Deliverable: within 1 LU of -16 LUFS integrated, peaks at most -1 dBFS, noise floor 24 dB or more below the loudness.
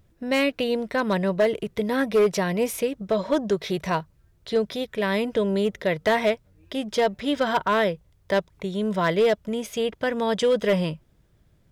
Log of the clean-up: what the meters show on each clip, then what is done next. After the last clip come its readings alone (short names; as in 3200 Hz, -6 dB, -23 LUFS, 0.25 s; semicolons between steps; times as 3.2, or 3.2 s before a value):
clipped 0.9%; flat tops at -14.5 dBFS; loudness -24.5 LUFS; peak -14.5 dBFS; loudness target -16.0 LUFS
-> clip repair -14.5 dBFS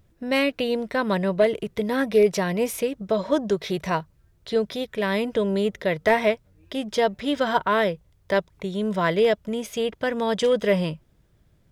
clipped 0.0%; loudness -24.0 LUFS; peak -6.5 dBFS; loudness target -16.0 LUFS
-> gain +8 dB; limiter -1 dBFS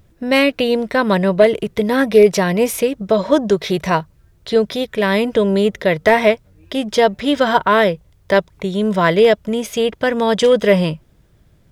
loudness -16.0 LUFS; peak -1.0 dBFS; noise floor -54 dBFS